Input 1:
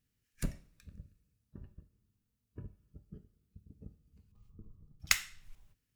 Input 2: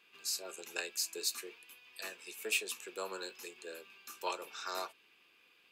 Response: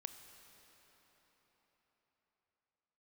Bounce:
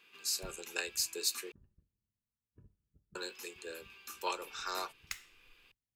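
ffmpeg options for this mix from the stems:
-filter_complex "[0:a]volume=-14.5dB[link_01];[1:a]volume=2dB,asplit=3[link_02][link_03][link_04];[link_02]atrim=end=1.52,asetpts=PTS-STARTPTS,afade=type=out:start_time=1.516:duration=0.004:curve=hsin[link_05];[link_03]atrim=start=1.52:end=3.15,asetpts=PTS-STARTPTS,volume=0[link_06];[link_04]atrim=start=3.15,asetpts=PTS-STARTPTS,afade=type=in:duration=0.004:curve=hsin[link_07];[link_05][link_06][link_07]concat=n=3:v=0:a=1[link_08];[link_01][link_08]amix=inputs=2:normalize=0,equalizer=frequency=650:width_type=o:width=0.31:gain=-5.5"

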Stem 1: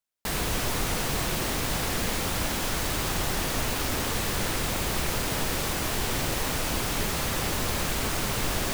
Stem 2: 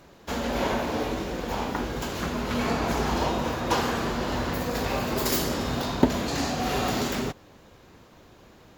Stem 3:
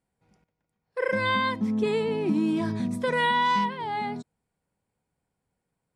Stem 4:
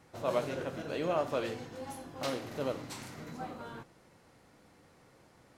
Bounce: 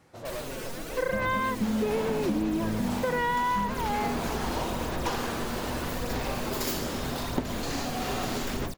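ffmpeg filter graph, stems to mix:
ffmpeg -i stem1.wav -i stem2.wav -i stem3.wav -i stem4.wav -filter_complex "[0:a]alimiter=level_in=2dB:limit=-24dB:level=0:latency=1:release=379,volume=-2dB,aphaser=in_gain=1:out_gain=1:delay=4.6:decay=0.77:speed=0.81:type=sinusoidal,volume=-7.5dB[link_01];[1:a]adelay=1350,volume=-4.5dB[link_02];[2:a]lowpass=2100,volume=2dB[link_03];[3:a]asoftclip=type=tanh:threshold=-34.5dB,volume=1dB[link_04];[link_01][link_02][link_03][link_04]amix=inputs=4:normalize=0,acompressor=threshold=-24dB:ratio=6" out.wav

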